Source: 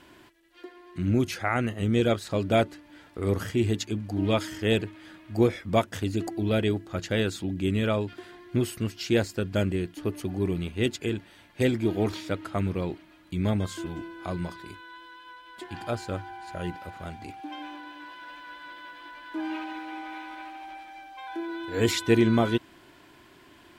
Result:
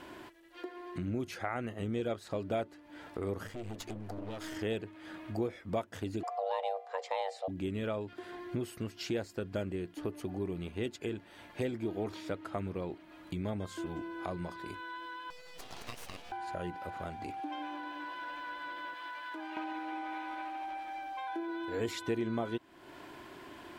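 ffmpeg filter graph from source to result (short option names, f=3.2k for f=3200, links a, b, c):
-filter_complex "[0:a]asettb=1/sr,asplit=3[a][b][c];[a]atrim=end=3.474[d];[b]atrim=start=3.47:end=4.56,asetpts=PTS-STARTPTS,afade=t=in:d=0.004:c=qsin,afade=t=out:st=1.086:d=0.004:c=qsin,acompressor=threshold=-32dB:ratio=6:attack=3.2:release=140:knee=1:detection=peak,aeval=exprs='clip(val(0),-1,0.00447)':c=same[e];[c]atrim=start=4.556[f];[d][e]acrossfade=d=0.004:c1=hsin:c2=qsin[g];[g][f]acrossfade=d=0.004:c1=qsin:c2=hsin,asettb=1/sr,asplit=3[h][i][j];[h]atrim=end=6.234[k];[i]atrim=start=6.23:end=7.48,asetpts=PTS-STARTPTS,afade=t=in:d=0.004:c=qsin,afade=t=out:st=1.246:d=0.004:c=qsin,bandreject=f=402.6:t=h:w=4,bandreject=f=805.2:t=h:w=4,bandreject=f=1.2078k:t=h:w=4,bandreject=f=1.6104k:t=h:w=4,bandreject=f=2.013k:t=h:w=4,bandreject=f=2.4156k:t=h:w=4,bandreject=f=2.8182k:t=h:w=4,bandreject=f=3.2208k:t=h:w=4,bandreject=f=3.6234k:t=h:w=4,afreqshift=380,lowpass=7.5k[l];[j]atrim=start=7.476[m];[k][l]acrossfade=d=0.004:c1=hsin:c2=qsin[n];[n][m]acrossfade=d=0.004:c1=qsin:c2=hsin,asettb=1/sr,asplit=3[o][p][q];[o]atrim=end=15.304[r];[p]atrim=start=15.3:end=16.32,asetpts=PTS-STARTPTS,afade=t=in:d=0.004:c=qsin,afade=t=out:st=1.016:d=0.004:c=qsin,highpass=f=1.2k:w=0.5412,highpass=f=1.2k:w=1.3066,aeval=exprs='abs(val(0))':c=same[s];[q]atrim=start=16.316[t];[r][s]acrossfade=d=0.004:c1=hsin:c2=qsin[u];[u][t]acrossfade=d=0.004:c1=qsin:c2=hsin,asettb=1/sr,asplit=3[v][w][x];[v]atrim=end=18.944[y];[w]atrim=start=18.94:end=19.57,asetpts=PTS-STARTPTS,afade=t=in:d=0.004:c=qsin,afade=t=out:st=0.626:d=0.004:c=qsin,highpass=f=920:p=1,acompressor=threshold=-41dB:ratio=6:attack=3.2:release=140:knee=1:detection=peak[z];[x]atrim=start=19.566[aa];[y][z]acrossfade=d=0.004:c1=hsin:c2=qsin[ab];[ab][aa]acrossfade=d=0.004:c1=qsin:c2=hsin,equalizer=f=650:w=0.47:g=7,acompressor=threshold=-40dB:ratio=2.5"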